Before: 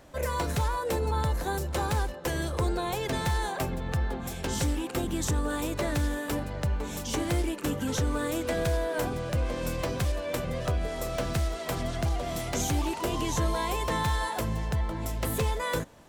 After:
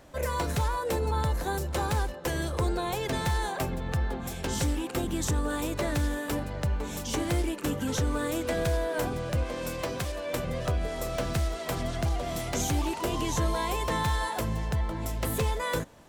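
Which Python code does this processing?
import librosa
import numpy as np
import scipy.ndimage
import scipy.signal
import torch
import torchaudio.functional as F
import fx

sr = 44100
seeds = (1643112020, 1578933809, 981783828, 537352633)

y = fx.low_shelf(x, sr, hz=160.0, db=-8.5, at=(9.43, 10.33))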